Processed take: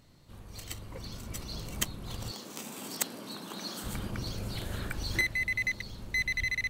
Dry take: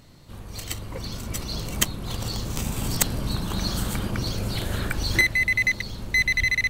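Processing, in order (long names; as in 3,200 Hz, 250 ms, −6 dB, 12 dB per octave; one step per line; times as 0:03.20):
0:02.31–0:03.84: high-pass filter 220 Hz 24 dB per octave
level −9 dB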